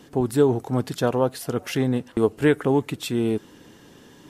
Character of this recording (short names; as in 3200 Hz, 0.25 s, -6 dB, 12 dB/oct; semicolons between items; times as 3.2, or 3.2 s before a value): noise floor -50 dBFS; spectral tilt -6.5 dB/oct